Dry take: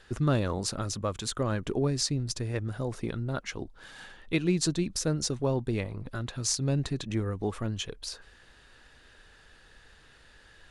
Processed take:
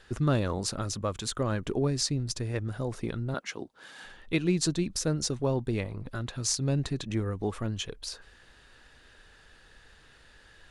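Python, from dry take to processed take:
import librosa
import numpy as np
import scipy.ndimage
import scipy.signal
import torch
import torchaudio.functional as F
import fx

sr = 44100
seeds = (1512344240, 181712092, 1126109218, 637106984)

y = fx.highpass(x, sr, hz=200.0, slope=12, at=(3.34, 4.05))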